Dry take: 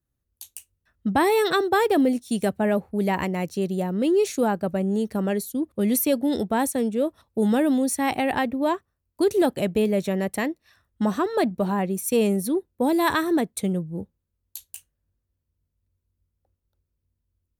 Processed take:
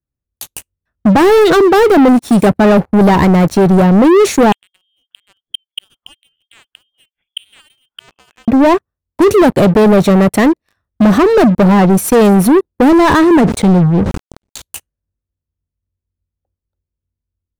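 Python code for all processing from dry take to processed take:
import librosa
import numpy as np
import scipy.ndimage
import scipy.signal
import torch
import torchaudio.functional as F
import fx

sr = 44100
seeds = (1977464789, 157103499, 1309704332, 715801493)

y = fx.chain(x, sr, fx.freq_invert(carrier_hz=3400),
    fx.gate_flip(shuts_db=-21.0, range_db=-32), at=(4.52, 8.48))
y = fx.chain(y, sr, fx.law_mismatch(coded='A'),
    fx.lowpass(hz=8600.0, slope=24),
    fx.sustainer(db_per_s=77.0), at=(12.91, 14.62))
y = fx.leveller(y, sr, passes=5)
y = fx.high_shelf(y, sr, hz=2100.0, db=-10.5)
y = y * 10.0 ** (6.5 / 20.0)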